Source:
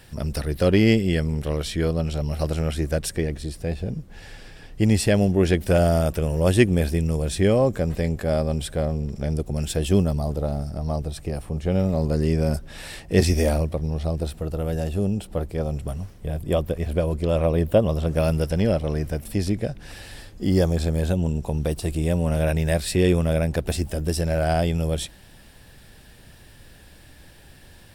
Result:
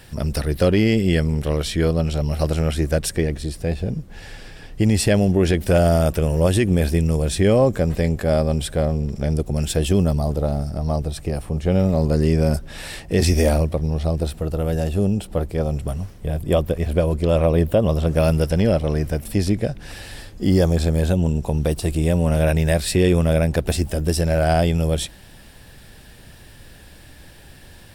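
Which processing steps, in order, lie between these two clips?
maximiser +10.5 dB; gain -6.5 dB

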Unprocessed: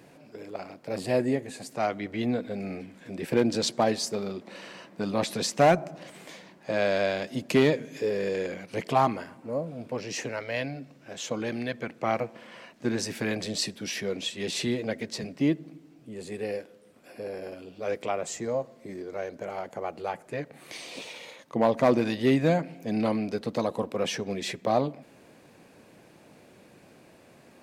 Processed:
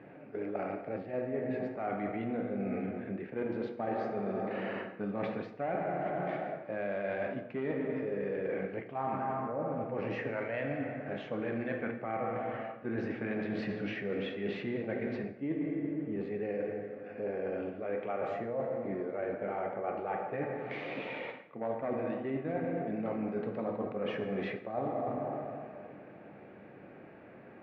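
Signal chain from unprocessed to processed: in parallel at 0 dB: level quantiser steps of 23 dB; on the sum: LPF 2200 Hz 24 dB/oct; low shelf 75 Hz -8.5 dB; notch 1000 Hz, Q 8.1; plate-style reverb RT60 2.3 s, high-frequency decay 0.55×, DRR 3 dB; reverse; compressor 20:1, threshold -31 dBFS, peak gain reduction 21 dB; reverse

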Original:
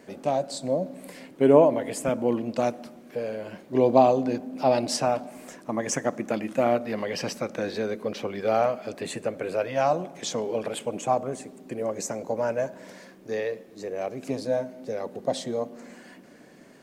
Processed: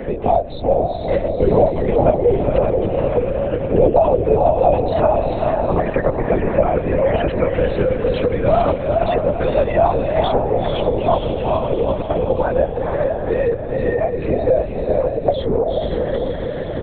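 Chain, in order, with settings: formant sharpening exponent 1.5; notch 580 Hz, Q 12; comb 6 ms, depth 74%; on a send: diffused feedback echo 0.453 s, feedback 43%, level -4.5 dB; on the sum: LPC vocoder at 8 kHz whisper; maximiser +6.5 dB; three-band squash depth 70%; gain +1 dB

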